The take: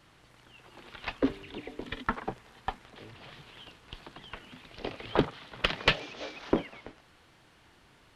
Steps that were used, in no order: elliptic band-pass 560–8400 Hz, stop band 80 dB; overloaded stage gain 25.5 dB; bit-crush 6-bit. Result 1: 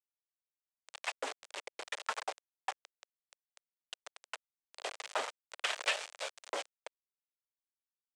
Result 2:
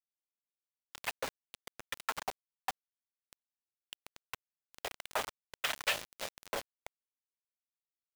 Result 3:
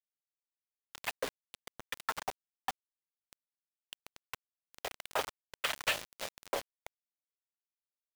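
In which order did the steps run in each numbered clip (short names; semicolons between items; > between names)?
bit-crush > overloaded stage > elliptic band-pass; overloaded stage > elliptic band-pass > bit-crush; elliptic band-pass > bit-crush > overloaded stage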